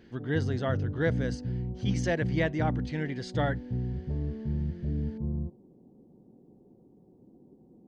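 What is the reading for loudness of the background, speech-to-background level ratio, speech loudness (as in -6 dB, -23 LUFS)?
-33.5 LUFS, 1.0 dB, -32.5 LUFS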